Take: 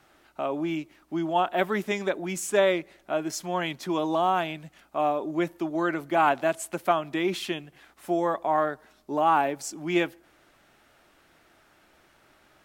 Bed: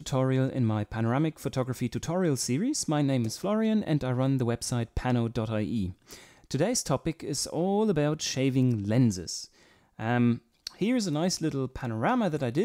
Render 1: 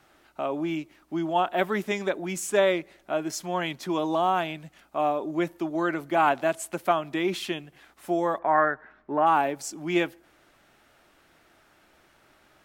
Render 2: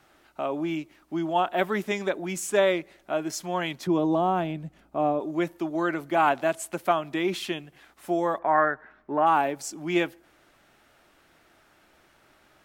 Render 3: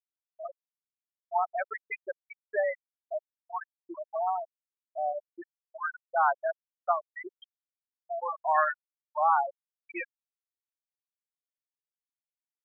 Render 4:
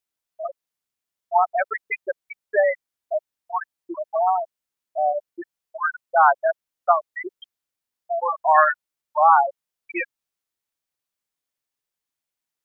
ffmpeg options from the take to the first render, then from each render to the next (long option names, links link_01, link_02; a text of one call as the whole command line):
ffmpeg -i in.wav -filter_complex "[0:a]asplit=3[link_01][link_02][link_03];[link_01]afade=type=out:start_time=8.38:duration=0.02[link_04];[link_02]lowpass=frequency=1700:width_type=q:width=3.1,afade=type=in:start_time=8.38:duration=0.02,afade=type=out:start_time=9.25:duration=0.02[link_05];[link_03]afade=type=in:start_time=9.25:duration=0.02[link_06];[link_04][link_05][link_06]amix=inputs=3:normalize=0" out.wav
ffmpeg -i in.wav -filter_complex "[0:a]asettb=1/sr,asplit=3[link_01][link_02][link_03];[link_01]atrim=end=3.874[link_04];[link_02]atrim=start=3.87:end=5.2,asetpts=PTS-STARTPTS,afade=type=in:duration=0.004:curve=qsin,afade=type=out:start_time=1.326:duration=0.004:curve=qsin,tiltshelf=frequency=670:gain=8[link_05];[link_03]atrim=start=5.196[link_06];[link_04][link_05]acrossfade=duration=0.004:curve1=hsin:curve2=qsin[link_07];[link_07][link_06]acrossfade=duration=0.004:curve1=qsin:curve2=hsin" out.wav
ffmpeg -i in.wav -af "highpass=760,afftfilt=real='re*gte(hypot(re,im),0.178)':imag='im*gte(hypot(re,im),0.178)':win_size=1024:overlap=0.75" out.wav
ffmpeg -i in.wav -af "volume=9.5dB" out.wav